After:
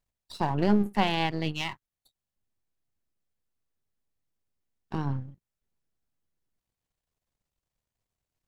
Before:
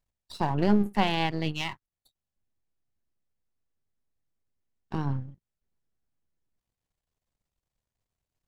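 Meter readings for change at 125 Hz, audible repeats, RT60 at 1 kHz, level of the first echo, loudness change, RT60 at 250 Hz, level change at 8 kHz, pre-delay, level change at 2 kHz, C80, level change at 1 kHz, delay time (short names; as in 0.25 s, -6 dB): -0.5 dB, none, none, none, -0.5 dB, none, n/a, none, 0.0 dB, none, 0.0 dB, none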